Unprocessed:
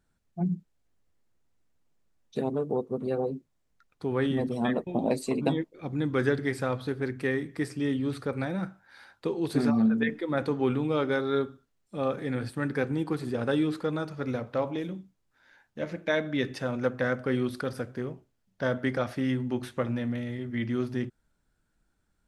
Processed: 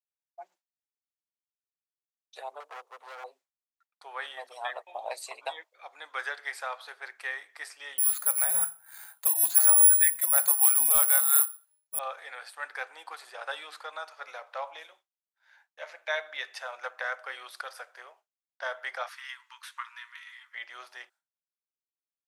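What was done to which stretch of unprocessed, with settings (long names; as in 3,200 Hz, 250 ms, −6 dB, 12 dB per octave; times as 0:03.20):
0:02.60–0:03.24: gain into a clipping stage and back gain 31.5 dB
0:07.98–0:11.99: bad sample-rate conversion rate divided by 4×, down filtered, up zero stuff
0:19.08–0:20.55: linear-phase brick-wall high-pass 890 Hz
whole clip: Butterworth high-pass 680 Hz 36 dB per octave; downward expander −58 dBFS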